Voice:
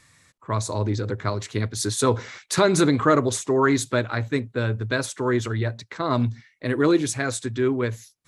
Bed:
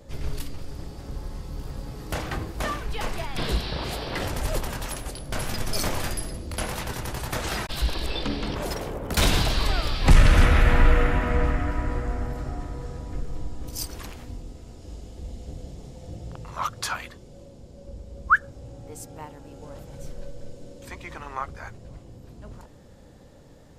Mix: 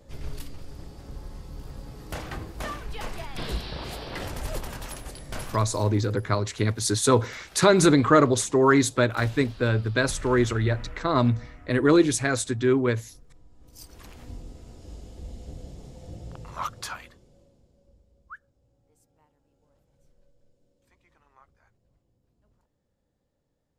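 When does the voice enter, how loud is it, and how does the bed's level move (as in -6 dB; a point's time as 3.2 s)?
5.05 s, +1.0 dB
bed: 5.4 s -5 dB
5.87 s -22.5 dB
13.47 s -22.5 dB
14.3 s -2.5 dB
16.6 s -2.5 dB
18.44 s -26.5 dB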